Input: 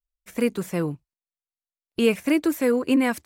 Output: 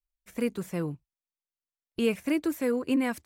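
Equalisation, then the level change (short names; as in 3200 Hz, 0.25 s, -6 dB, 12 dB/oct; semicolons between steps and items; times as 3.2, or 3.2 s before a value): low shelf 130 Hz +6 dB; -7.0 dB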